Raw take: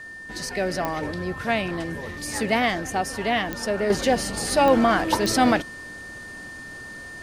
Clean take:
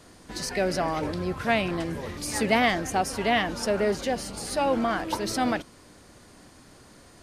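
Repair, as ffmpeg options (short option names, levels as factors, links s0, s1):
-af "adeclick=t=4,bandreject=f=1800:w=30,asetnsamples=n=441:p=0,asendcmd='3.9 volume volume -7dB',volume=1"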